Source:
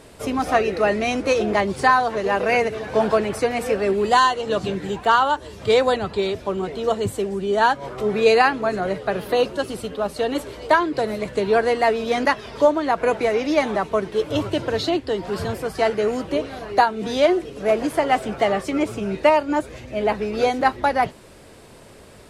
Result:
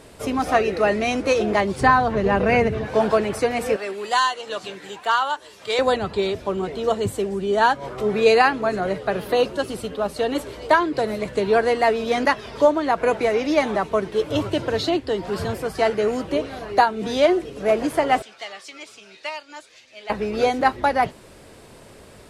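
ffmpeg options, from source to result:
-filter_complex "[0:a]asettb=1/sr,asplit=3[a][b][c];[a]atrim=end=1.814[d];[b]atrim=start=1.81:end=2.86,asetpts=PTS-STARTPTS,afade=t=in:d=0.004:c=qsin,afade=t=out:st=1.046:d=0.004:c=qsin,bass=f=250:g=13,treble=f=4k:g=-7[e];[c]atrim=start=2.856[f];[d][e]acrossfade=d=0.004:c1=hsin:c2=qsin[g];[g][f]acrossfade=d=0.004:c1=qsin:c2=hsin,asettb=1/sr,asplit=3[h][i][j];[h]atrim=end=3.764[k];[i]atrim=start=3.76:end=5.79,asetpts=PTS-STARTPTS,afade=t=in:d=0.004:c=qsin,afade=t=out:st=2.026:d=0.004:c=qsin,highpass=f=1.2k:p=1[l];[j]atrim=start=5.786[m];[k][l]acrossfade=d=0.004:c1=hsin:c2=qsin[n];[n][m]acrossfade=d=0.004:c1=qsin:c2=hsin,asettb=1/sr,asplit=3[o][p][q];[o]atrim=end=18.224[r];[p]atrim=start=18.22:end=20.1,asetpts=PTS-STARTPTS,afade=t=in:d=0.004:c=qsin,afade=t=out:st=1.876:d=0.004:c=qsin,bandpass=f=4.6k:t=q:w=1.2[s];[q]atrim=start=20.096[t];[r][s]acrossfade=d=0.004:c1=hsin:c2=qsin[u];[u][t]acrossfade=d=0.004:c1=qsin:c2=hsin"

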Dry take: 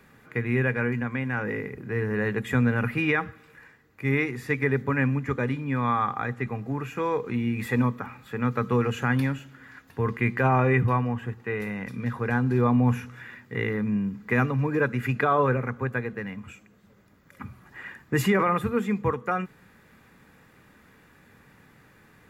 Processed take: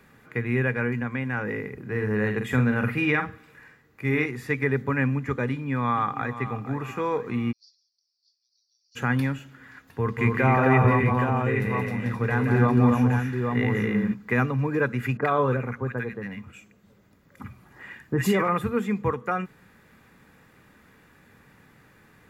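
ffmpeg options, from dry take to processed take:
-filter_complex "[0:a]asettb=1/sr,asplit=3[a][b][c];[a]atrim=end=1.844[d];[b]atrim=start=1.84:end=4.26,asetpts=PTS-STARTPTS,afade=t=in:d=0.004:c=qsin,afade=t=out:st=2.416:d=0.004:c=qsin,asplit=2[e][f];[f]adelay=47,volume=-7dB[g];[e][g]amix=inputs=2:normalize=0,atrim=end_sample=106722[h];[c]atrim=start=4.256[i];[d][h]acrossfade=d=0.004:c1=hsin:c2=qsin[j];[j][i]acrossfade=d=0.004:c1=qsin:c2=hsin,asplit=2[k][l];[l]afade=t=in:st=5.47:d=0.01,afade=t=out:st=6.43:d=0.01,aecho=0:1:480|960|1440|1920|2400:0.237137|0.118569|0.0592843|0.0296422|0.0148211[m];[k][m]amix=inputs=2:normalize=0,asplit=3[n][o][p];[n]afade=t=out:st=7.51:d=0.02[q];[o]asuperpass=centerf=5000:order=8:qfactor=3.6,afade=t=in:st=7.51:d=0.02,afade=t=out:st=8.95:d=0.02[r];[p]afade=t=in:st=8.95:d=0.02[s];[q][r][s]amix=inputs=3:normalize=0,asplit=3[t][u][v];[t]afade=t=out:st=10.17:d=0.02[w];[u]aecho=1:1:175|263|820:0.596|0.668|0.562,afade=t=in:st=10.17:d=0.02,afade=t=out:st=14.13:d=0.02[x];[v]afade=t=in:st=14.13:d=0.02[y];[w][x][y]amix=inputs=3:normalize=0,asettb=1/sr,asplit=3[z][aa][ab];[z]atrim=end=15.174[ac];[aa]atrim=start=15.17:end=18.48,asetpts=PTS-STARTPTS,afade=t=in:d=0.004:c=qsin,afade=t=out:st=3.306:d=0.004:c=qsin,acrossover=split=1400[ad][ae];[ae]adelay=50[af];[ad][af]amix=inputs=2:normalize=0,atrim=end_sample=145971[ag];[ab]atrim=start=18.476[ah];[ac][ag]acrossfade=d=0.004:c1=hsin:c2=qsin[ai];[ai][ah]acrossfade=d=0.004:c1=qsin:c2=hsin"

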